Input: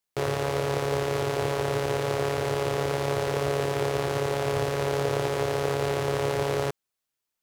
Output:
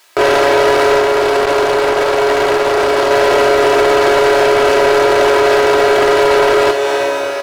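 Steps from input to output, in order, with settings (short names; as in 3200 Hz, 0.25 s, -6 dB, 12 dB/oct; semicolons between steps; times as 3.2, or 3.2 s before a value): two-slope reverb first 0.34 s, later 4.2 s, from -17 dB, DRR 14 dB; overdrive pedal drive 28 dB, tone 2900 Hz, clips at -10.5 dBFS; low shelf 99 Hz -7.5 dB; compressor, threshold -28 dBFS, peak gain reduction 10.5 dB; bell 180 Hz -11 dB 0.89 oct; comb 3.1 ms, depth 59%; maximiser +22.5 dB; 1–3.11 core saturation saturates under 520 Hz; gain -2.5 dB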